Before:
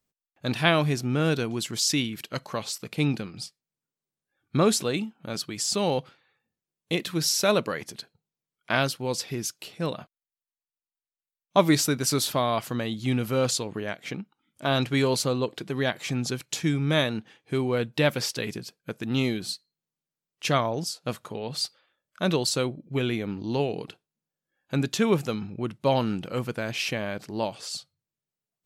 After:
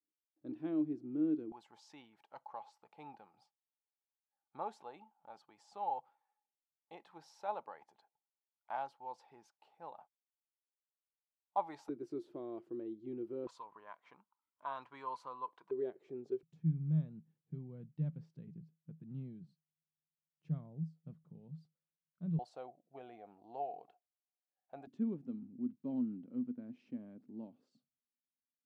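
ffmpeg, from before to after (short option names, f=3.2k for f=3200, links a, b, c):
-af "asetnsamples=n=441:p=0,asendcmd='1.52 bandpass f 840;11.89 bandpass f 350;13.47 bandpass f 1000;15.71 bandpass f 390;16.43 bandpass f 160;22.39 bandpass f 720;24.87 bandpass f 250',bandpass=f=310:t=q:w=14:csg=0"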